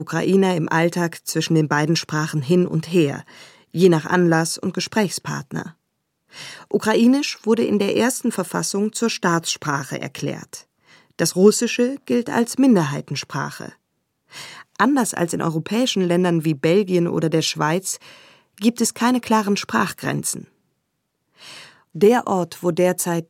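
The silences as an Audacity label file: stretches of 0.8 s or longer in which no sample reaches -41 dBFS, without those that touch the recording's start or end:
20.450000	21.400000	silence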